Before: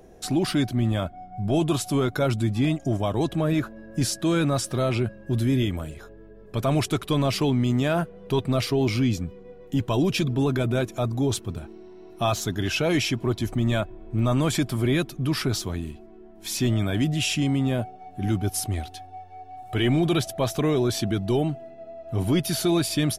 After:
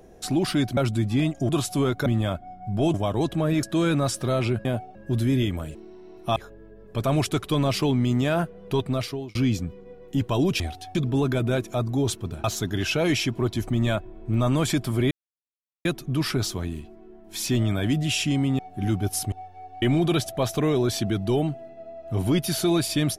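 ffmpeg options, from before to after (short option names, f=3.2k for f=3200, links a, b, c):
-filter_complex "[0:a]asplit=18[a][b][c][d][e][f][g][h][i][j][k][l][m][n][o][p][q][r];[a]atrim=end=0.772[s];[b]atrim=start=2.218:end=2.942[t];[c]atrim=start=1.648:end=2.222[u];[d]atrim=start=0.768:end=1.652[v];[e]atrim=start=2.938:end=3.632[w];[f]atrim=start=4.128:end=5.152[x];[g]atrim=start=17.698:end=18.002[y];[h]atrim=start=5.148:end=5.952[z];[i]atrim=start=11.678:end=12.292[aa];[j]atrim=start=5.948:end=8.94,asetpts=PTS-STARTPTS,afade=t=out:st=2.252:d=0.74:c=qsin[ab];[k]atrim=start=8.94:end=10.192,asetpts=PTS-STARTPTS,afade=t=in:d=0.004:c=hsin[ac];[l]atrim=start=18.728:end=19.082[ad];[m]atrim=start=10.188:end=11.682[ae];[n]atrim=start=12.288:end=14.96,asetpts=PTS-STARTPTS,afade=t=out:st=2.668:d=0.004:c=hsin,apad=pad_dur=0.74[af];[o]atrim=start=14.96:end=17.702,asetpts=PTS-STARTPTS,afade=t=in:d=0.004:c=hsin[ag];[p]atrim=start=17.998:end=18.732[ah];[q]atrim=start=19.078:end=19.582[ai];[r]atrim=start=19.828[aj];[s][t]acrossfade=d=0.004:c1=hsin:c2=hsin[ak];[ak][u]acrossfade=d=0.004:c1=hsin:c2=hsin[al];[al][v]acrossfade=d=0.004:c1=hsin:c2=hsin[am];[am][w]acrossfade=d=0.004:c1=hsin:c2=hsin[an];[an][x]acrossfade=d=0.004:c1=hsin:c2=hsin[ao];[ao][y]acrossfade=d=0.004:c1=hsin:c2=hsin[ap];[ap][z]acrossfade=d=0.004:c1=hsin:c2=hsin[aq];[aq][aa]acrossfade=d=0.004:c1=hsin:c2=hsin[ar];[ab][ac]concat=n=2:v=0:a=1[as];[ar][as]acrossfade=d=0.004:c1=hsin:c2=hsin[at];[at][ad]acrossfade=d=0.004:c1=hsin:c2=hsin[au];[au][ae]acrossfade=d=0.004:c1=hsin:c2=hsin[av];[af][ag]concat=n=2:v=0:a=1[aw];[av][aw]acrossfade=d=0.004:c1=hsin:c2=hsin[ax];[ax][ah]acrossfade=d=0.004:c1=hsin:c2=hsin[ay];[ay][ai]acrossfade=d=0.004:c1=hsin:c2=hsin[az];[az][aj]acrossfade=d=0.004:c1=hsin:c2=hsin"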